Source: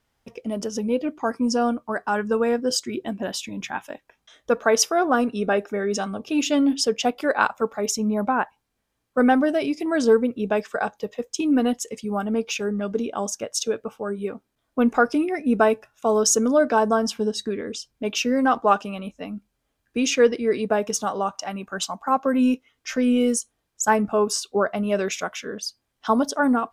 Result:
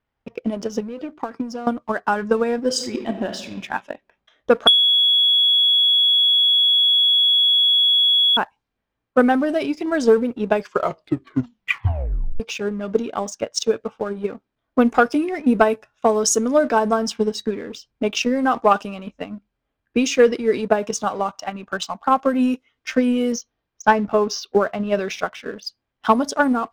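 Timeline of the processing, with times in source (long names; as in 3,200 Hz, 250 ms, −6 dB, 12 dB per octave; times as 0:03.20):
0:00.80–0:01.67: downward compressor 5 to 1, threshold −27 dBFS
0:02.65–0:03.47: thrown reverb, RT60 1 s, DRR 5.5 dB
0:04.67–0:08.37: beep over 3,360 Hz −11.5 dBFS
0:10.55: tape stop 1.85 s
0:23.32–0:25.65: Butterworth low-pass 6,300 Hz 96 dB per octave
whole clip: low-pass that shuts in the quiet parts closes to 2,800 Hz, open at −15.5 dBFS; transient designer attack +9 dB, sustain +5 dB; leveller curve on the samples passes 1; level −5 dB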